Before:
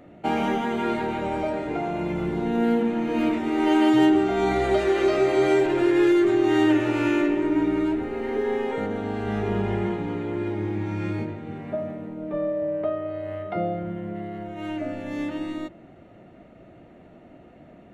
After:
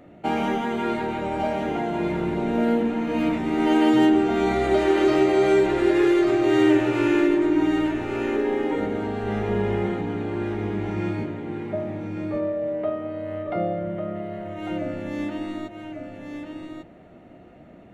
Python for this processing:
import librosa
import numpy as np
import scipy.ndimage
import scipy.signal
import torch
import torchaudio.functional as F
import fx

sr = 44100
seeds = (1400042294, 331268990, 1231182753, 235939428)

y = x + 10.0 ** (-6.0 / 20.0) * np.pad(x, (int(1147 * sr / 1000.0), 0))[:len(x)]